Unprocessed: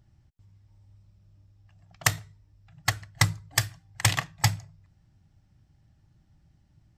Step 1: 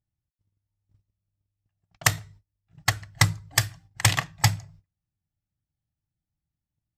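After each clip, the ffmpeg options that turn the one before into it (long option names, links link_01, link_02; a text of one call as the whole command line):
ffmpeg -i in.wav -af "agate=range=-27dB:threshold=-52dB:ratio=16:detection=peak,volume=2.5dB" out.wav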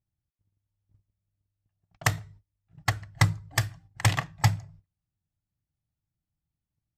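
ffmpeg -i in.wav -af "highshelf=frequency=2100:gain=-9" out.wav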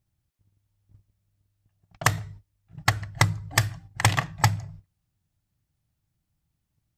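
ffmpeg -i in.wav -af "acompressor=threshold=-26dB:ratio=6,volume=9dB" out.wav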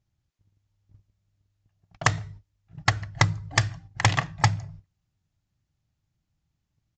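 ffmpeg -i in.wav -af "aresample=16000,aresample=44100" out.wav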